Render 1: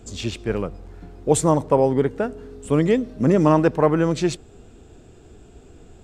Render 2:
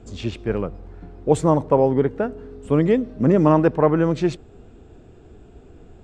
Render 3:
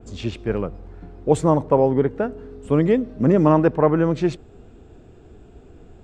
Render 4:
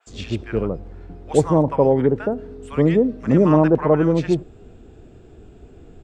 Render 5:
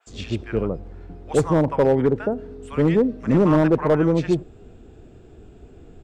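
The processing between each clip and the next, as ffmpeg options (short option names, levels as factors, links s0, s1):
-af "aemphasis=mode=reproduction:type=75fm"
-af "adynamicequalizer=threshold=0.0178:dfrequency=2900:dqfactor=0.7:tfrequency=2900:tqfactor=0.7:attack=5:release=100:ratio=0.375:range=2:mode=cutabove:tftype=highshelf"
-filter_complex "[0:a]acrossover=split=1000[s0][s1];[s0]adelay=70[s2];[s2][s1]amix=inputs=2:normalize=0,volume=1.19"
-af "volume=2.99,asoftclip=hard,volume=0.335,volume=0.891"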